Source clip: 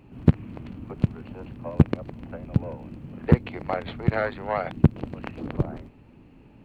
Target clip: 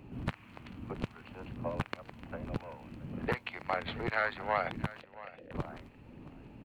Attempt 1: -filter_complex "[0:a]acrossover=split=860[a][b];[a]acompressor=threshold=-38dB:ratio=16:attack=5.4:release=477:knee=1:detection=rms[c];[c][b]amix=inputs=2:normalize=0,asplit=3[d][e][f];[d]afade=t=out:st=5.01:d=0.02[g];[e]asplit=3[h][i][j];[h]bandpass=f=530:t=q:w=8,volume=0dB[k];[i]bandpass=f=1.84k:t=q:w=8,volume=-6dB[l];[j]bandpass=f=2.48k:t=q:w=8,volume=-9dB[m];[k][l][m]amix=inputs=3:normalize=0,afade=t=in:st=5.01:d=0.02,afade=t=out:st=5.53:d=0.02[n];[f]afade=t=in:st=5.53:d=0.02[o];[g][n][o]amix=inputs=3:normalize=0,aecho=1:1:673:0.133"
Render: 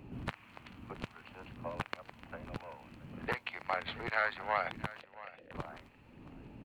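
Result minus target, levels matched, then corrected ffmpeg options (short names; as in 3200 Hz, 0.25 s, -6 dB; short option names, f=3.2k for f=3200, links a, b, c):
compressor: peak gain reduction +7 dB
-filter_complex "[0:a]acrossover=split=860[a][b];[a]acompressor=threshold=-30.5dB:ratio=16:attack=5.4:release=477:knee=1:detection=rms[c];[c][b]amix=inputs=2:normalize=0,asplit=3[d][e][f];[d]afade=t=out:st=5.01:d=0.02[g];[e]asplit=3[h][i][j];[h]bandpass=f=530:t=q:w=8,volume=0dB[k];[i]bandpass=f=1.84k:t=q:w=8,volume=-6dB[l];[j]bandpass=f=2.48k:t=q:w=8,volume=-9dB[m];[k][l][m]amix=inputs=3:normalize=0,afade=t=in:st=5.01:d=0.02,afade=t=out:st=5.53:d=0.02[n];[f]afade=t=in:st=5.53:d=0.02[o];[g][n][o]amix=inputs=3:normalize=0,aecho=1:1:673:0.133"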